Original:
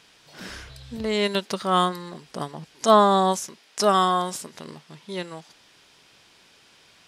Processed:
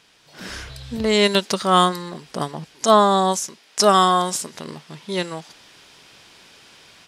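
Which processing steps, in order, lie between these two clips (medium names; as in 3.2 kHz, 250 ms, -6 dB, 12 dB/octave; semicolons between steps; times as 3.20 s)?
level rider gain up to 8 dB; dynamic bell 6.9 kHz, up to +5 dB, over -38 dBFS, Q 0.86; trim -1 dB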